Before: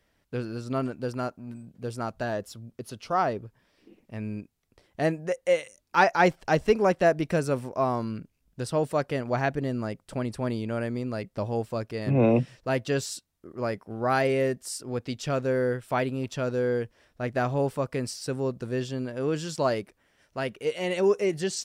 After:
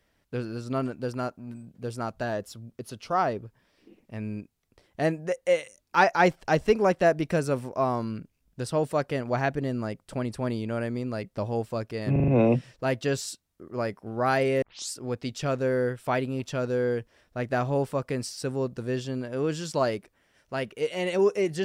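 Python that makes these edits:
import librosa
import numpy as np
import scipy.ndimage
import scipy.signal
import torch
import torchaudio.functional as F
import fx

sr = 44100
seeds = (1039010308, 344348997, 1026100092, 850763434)

y = fx.edit(x, sr, fx.stutter(start_s=12.12, slice_s=0.04, count=5),
    fx.tape_start(start_s=14.46, length_s=0.29), tone=tone)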